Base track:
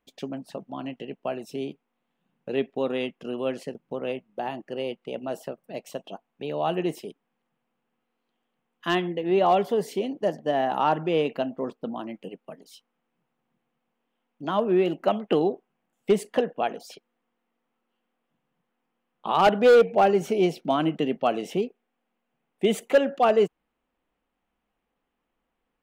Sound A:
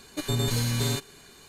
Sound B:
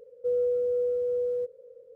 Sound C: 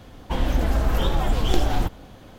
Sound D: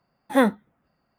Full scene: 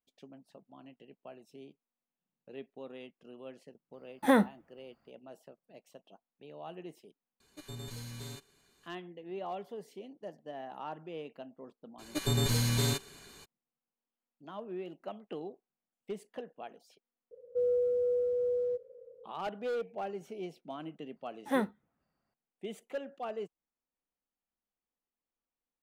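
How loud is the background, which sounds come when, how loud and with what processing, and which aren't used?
base track −19 dB
0:03.93: mix in D −2 dB + brickwall limiter −13 dBFS
0:07.40: mix in A −17.5 dB
0:11.98: mix in A −2.5 dB, fades 0.02 s
0:17.31: mix in B −3 dB + low-pass that shuts in the quiet parts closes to 1,200 Hz, open at −23.5 dBFS
0:21.16: mix in D −11.5 dB
not used: C

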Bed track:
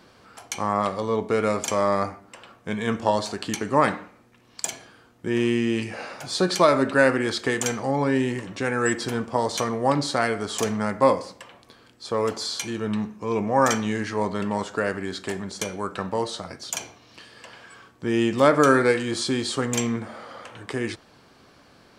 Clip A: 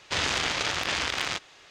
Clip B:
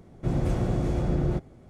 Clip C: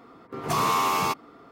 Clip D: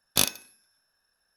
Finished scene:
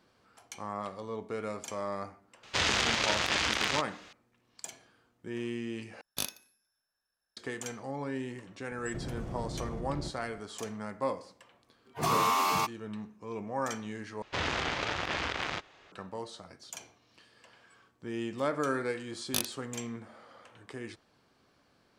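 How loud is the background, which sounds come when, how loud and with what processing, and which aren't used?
bed track −14 dB
0:02.43: mix in A −1 dB
0:06.01: overwrite with D −12 dB
0:08.71: mix in B −2.5 dB + downward compressor 12 to 1, threshold −32 dBFS
0:11.53: mix in C −3.5 dB + noise reduction from a noise print of the clip's start 27 dB
0:14.22: overwrite with A −1 dB + low-pass filter 1,600 Hz 6 dB per octave
0:19.17: mix in D −9 dB + adaptive Wiener filter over 9 samples

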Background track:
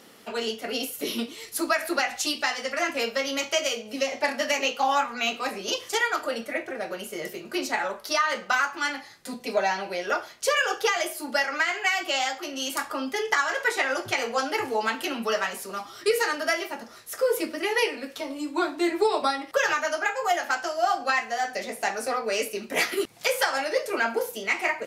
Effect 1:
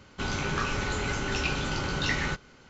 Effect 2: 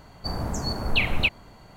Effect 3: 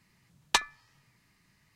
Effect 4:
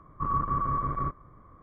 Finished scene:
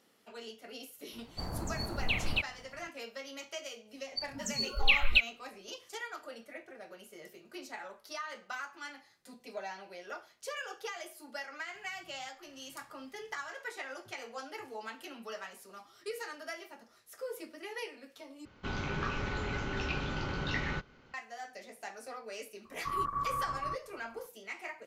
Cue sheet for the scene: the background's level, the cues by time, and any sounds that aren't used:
background track −17 dB
0:01.13: mix in 2 −9 dB
0:03.92: mix in 2 −1.5 dB + noise reduction from a noise print of the clip's start 28 dB
0:11.74: mix in 3 −2.5 dB + downward compressor 10 to 1, threshold −55 dBFS
0:18.45: overwrite with 1 −5 dB + high-frequency loss of the air 150 metres
0:22.65: mix in 4 −14.5 dB + parametric band 1,600 Hz +10.5 dB 2.7 octaves

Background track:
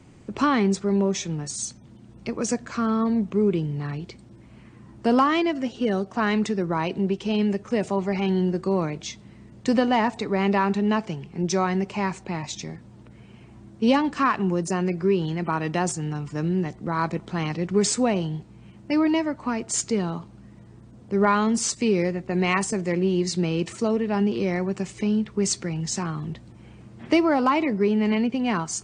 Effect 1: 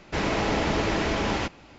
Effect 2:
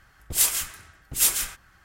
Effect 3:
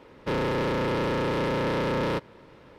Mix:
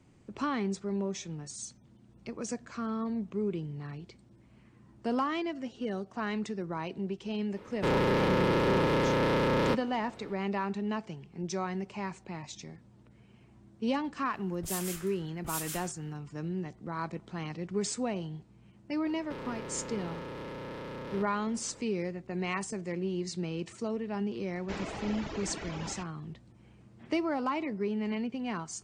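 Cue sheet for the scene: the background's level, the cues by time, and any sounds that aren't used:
background track −11 dB
0:07.56: mix in 3 −0.5 dB
0:14.33: mix in 2 −8.5 dB + downward compressor 2.5 to 1, threshold −28 dBFS
0:19.04: mix in 3 −2.5 dB + downward compressor, threshold −38 dBFS
0:24.56: mix in 1 −11.5 dB + reverb reduction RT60 1.7 s

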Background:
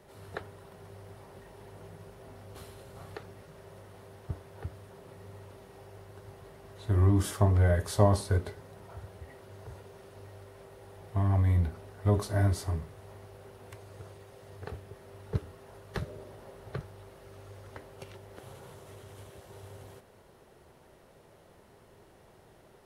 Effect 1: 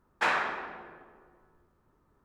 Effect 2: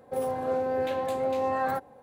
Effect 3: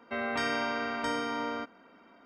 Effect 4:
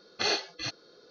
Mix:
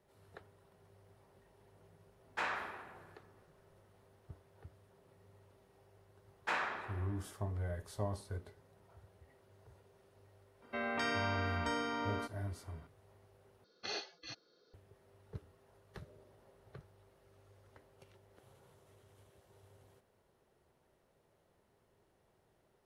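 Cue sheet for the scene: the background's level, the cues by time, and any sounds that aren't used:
background −15.5 dB
0:02.16: mix in 1 −10.5 dB
0:06.26: mix in 1 −9 dB
0:10.62: mix in 3 −5 dB
0:13.64: overwrite with 4 −13.5 dB
not used: 2

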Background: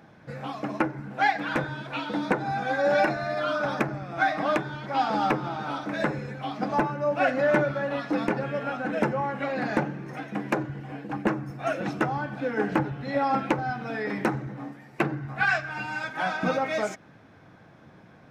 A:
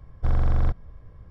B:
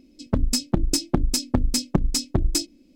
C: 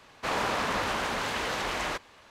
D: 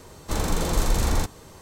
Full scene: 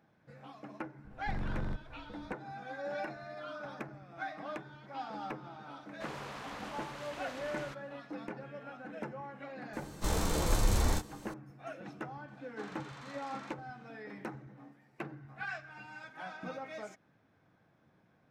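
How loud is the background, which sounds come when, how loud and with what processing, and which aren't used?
background −16.5 dB
0:01.04: mix in A −10.5 dB + wave folding −19.5 dBFS
0:05.77: mix in C −16 dB
0:09.73: mix in D −2 dB + micro pitch shift up and down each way 18 cents
0:12.28: mix in D −4.5 dB + four-pole ladder band-pass 1,800 Hz, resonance 20%
not used: B

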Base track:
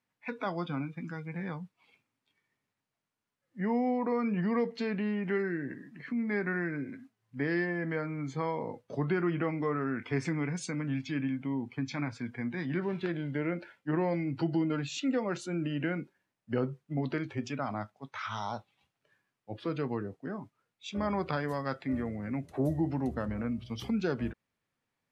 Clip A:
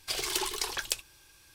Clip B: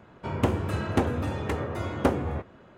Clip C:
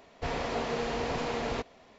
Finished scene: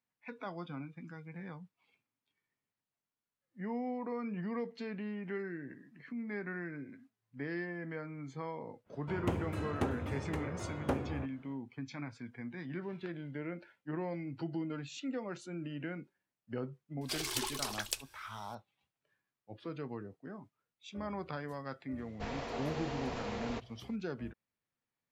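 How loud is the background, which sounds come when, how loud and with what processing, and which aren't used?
base track −8.5 dB
0:08.84: mix in B −10 dB, fades 0.10 s
0:17.01: mix in A −5.5 dB
0:21.98: mix in C −8 dB

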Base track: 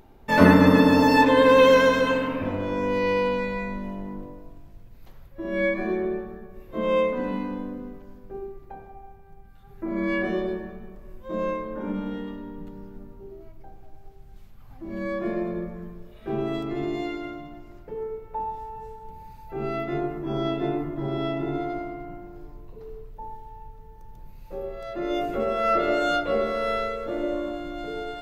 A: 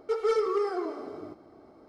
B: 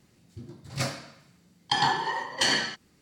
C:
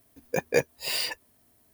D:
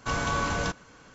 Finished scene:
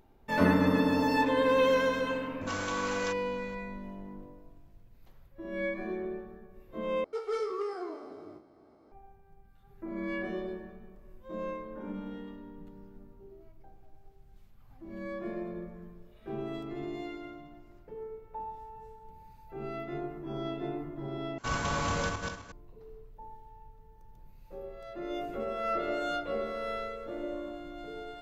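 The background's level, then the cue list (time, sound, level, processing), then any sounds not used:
base track −9.5 dB
0:02.41: mix in D −5 dB + high-pass filter 860 Hz
0:07.04: overwrite with A −7.5 dB + peak hold with a decay on every bin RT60 0.32 s
0:21.38: overwrite with D −4.5 dB + feedback delay that plays each chunk backwards 130 ms, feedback 50%, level −3 dB
not used: B, C

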